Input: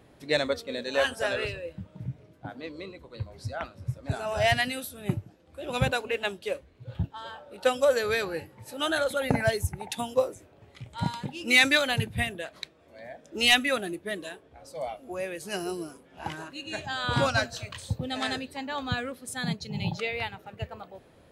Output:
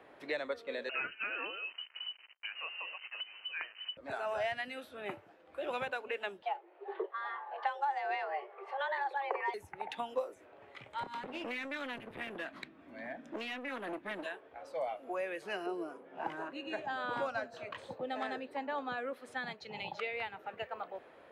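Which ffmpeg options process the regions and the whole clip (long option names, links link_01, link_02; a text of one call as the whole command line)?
ffmpeg -i in.wav -filter_complex "[0:a]asettb=1/sr,asplit=3[link_01][link_02][link_03];[link_01]atrim=end=0.894[link_04];[link_02]atrim=start=0.89:end=3.97,asetpts=PTS-STARTPTS,afade=type=in:duration=0.004:curve=qsin,afade=type=out:start_time=3.076:duration=0.004:curve=qsin,acrusher=bits=7:mix=0:aa=0.5,lowpass=frequency=2600:width_type=q:width=0.5098,lowpass=frequency=2600:width_type=q:width=0.6013,lowpass=frequency=2600:width_type=q:width=0.9,lowpass=frequency=2600:width_type=q:width=2.563,afreqshift=-3100[link_05];[link_03]atrim=start=3.966[link_06];[link_04][link_05]acrossfade=duration=0.004:curve1=hsin:curve2=qsin[link_07];[link_07][link_06]acrossfade=duration=0.004:curve1=qsin:curve2=hsin,asettb=1/sr,asplit=3[link_08][link_09][link_10];[link_08]atrim=end=6.424[link_11];[link_09]atrim=start=6.42:end=9.54,asetpts=PTS-STARTPTS,afade=type=in:duration=0.004:curve=qsin,afade=type=out:start_time=3.116:duration=0.004:curve=qsin,afreqshift=280,highpass=340,lowpass=2600[link_12];[link_10]atrim=start=9.536[link_13];[link_11][link_12]acrossfade=duration=0.004:curve1=hsin:curve2=qsin[link_14];[link_14][link_13]acrossfade=duration=0.004:curve1=qsin:curve2=hsin,asettb=1/sr,asplit=3[link_15][link_16][link_17];[link_15]atrim=end=11.034[link_18];[link_16]atrim=start=11.03:end=14.26,asetpts=PTS-STARTPTS,afade=type=in:duration=0.004:curve=qsin,afade=type=out:start_time=3.226:duration=0.004:curve=qsin,lowshelf=frequency=350:width_type=q:width=3:gain=10,acompressor=threshold=-24dB:ratio=8:attack=3.2:release=140:knee=1:detection=peak,aeval=exprs='clip(val(0),-1,0.0168)':channel_layout=same[link_19];[link_17]atrim=start=14.256[link_20];[link_18][link_19]acrossfade=duration=0.004:curve1=hsin:curve2=qsin[link_21];[link_21][link_20]acrossfade=duration=0.004:curve1=qsin:curve2=hsin,asettb=1/sr,asplit=3[link_22][link_23][link_24];[link_22]atrim=end=15.664[link_25];[link_23]atrim=start=15.66:end=19.13,asetpts=PTS-STARTPTS,afade=type=in:duration=0.004:curve=qsin,afade=type=out:start_time=3.466:duration=0.004:curve=qsin,highpass=130,tiltshelf=frequency=850:gain=7.5[link_26];[link_24]atrim=start=19.126[link_27];[link_25][link_26]acrossfade=duration=0.004:curve1=hsin:curve2=qsin[link_28];[link_28][link_27]acrossfade=duration=0.004:curve1=qsin:curve2=hsin,lowshelf=frequency=410:gain=-11,acrossover=split=410|5000[link_29][link_30][link_31];[link_29]acompressor=threshold=-50dB:ratio=4[link_32];[link_30]acompressor=threshold=-42dB:ratio=4[link_33];[link_31]acompressor=threshold=-55dB:ratio=4[link_34];[link_32][link_33][link_34]amix=inputs=3:normalize=0,acrossover=split=260 2700:gain=0.2 1 0.112[link_35][link_36][link_37];[link_35][link_36][link_37]amix=inputs=3:normalize=0,volume=6dB" out.wav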